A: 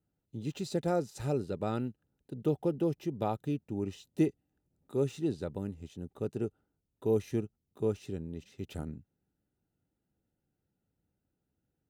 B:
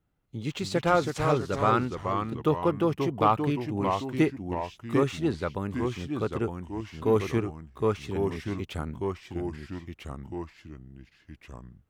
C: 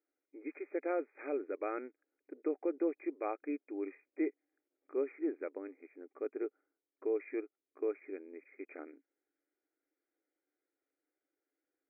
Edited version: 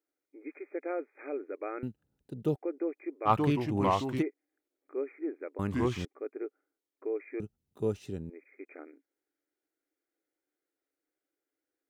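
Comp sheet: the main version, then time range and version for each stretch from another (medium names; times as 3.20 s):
C
1.83–2.56 s: from A
3.28–4.20 s: from B, crossfade 0.06 s
5.59–6.05 s: from B
7.40–8.30 s: from A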